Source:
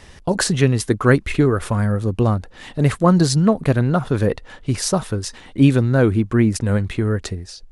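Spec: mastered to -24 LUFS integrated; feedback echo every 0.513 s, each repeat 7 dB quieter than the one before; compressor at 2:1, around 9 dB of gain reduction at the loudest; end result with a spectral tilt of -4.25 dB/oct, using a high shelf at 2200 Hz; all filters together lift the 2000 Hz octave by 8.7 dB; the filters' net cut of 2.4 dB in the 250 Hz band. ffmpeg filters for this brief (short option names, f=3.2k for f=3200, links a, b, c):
-af "equalizer=f=250:t=o:g=-3.5,equalizer=f=2k:t=o:g=7.5,highshelf=f=2.2k:g=8,acompressor=threshold=-23dB:ratio=2,aecho=1:1:513|1026|1539|2052|2565:0.447|0.201|0.0905|0.0407|0.0183,volume=-1.5dB"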